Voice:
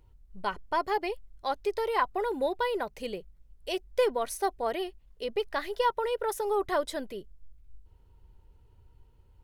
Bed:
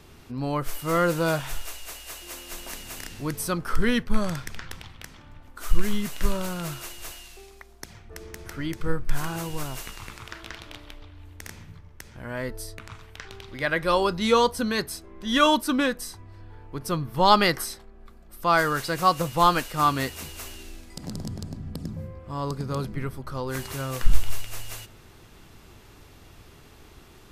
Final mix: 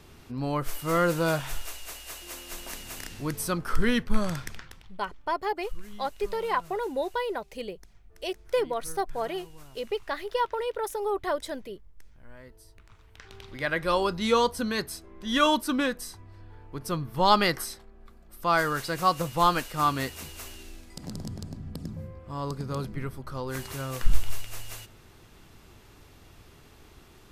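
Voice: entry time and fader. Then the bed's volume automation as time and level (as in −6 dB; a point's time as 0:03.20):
4.55 s, −0.5 dB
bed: 0:04.48 −1.5 dB
0:04.96 −18 dB
0:12.82 −18 dB
0:13.44 −3 dB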